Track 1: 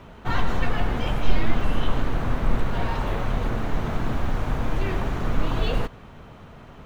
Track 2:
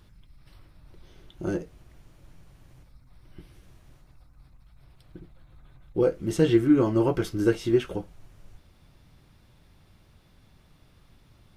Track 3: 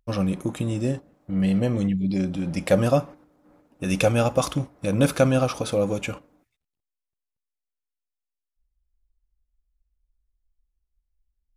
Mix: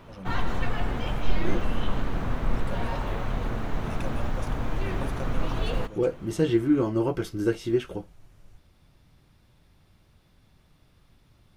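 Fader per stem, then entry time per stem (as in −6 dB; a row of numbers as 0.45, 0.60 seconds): −4.0, −2.5, −19.0 decibels; 0.00, 0.00, 0.00 seconds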